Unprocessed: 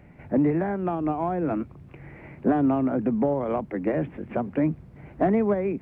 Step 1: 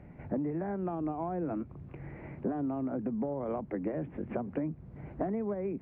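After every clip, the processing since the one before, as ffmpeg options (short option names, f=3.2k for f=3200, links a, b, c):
-af "lowpass=f=1.2k:p=1,acompressor=threshold=-31dB:ratio=6"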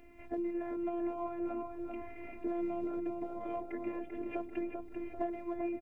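-filter_complex "[0:a]afftfilt=real='hypot(re,im)*cos(PI*b)':imag='0':win_size=512:overlap=0.75,aexciter=amount=3.2:drive=5.7:freq=2.2k,asplit=2[a][b];[b]adelay=391,lowpass=f=2.1k:p=1,volume=-4dB,asplit=2[c][d];[d]adelay=391,lowpass=f=2.1k:p=1,volume=0.53,asplit=2[e][f];[f]adelay=391,lowpass=f=2.1k:p=1,volume=0.53,asplit=2[g][h];[h]adelay=391,lowpass=f=2.1k:p=1,volume=0.53,asplit=2[i][j];[j]adelay=391,lowpass=f=2.1k:p=1,volume=0.53,asplit=2[k][l];[l]adelay=391,lowpass=f=2.1k:p=1,volume=0.53,asplit=2[m][n];[n]adelay=391,lowpass=f=2.1k:p=1,volume=0.53[o];[a][c][e][g][i][k][m][o]amix=inputs=8:normalize=0"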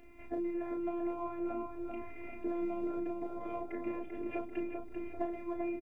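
-filter_complex "[0:a]asplit=2[a][b];[b]adelay=34,volume=-7dB[c];[a][c]amix=inputs=2:normalize=0"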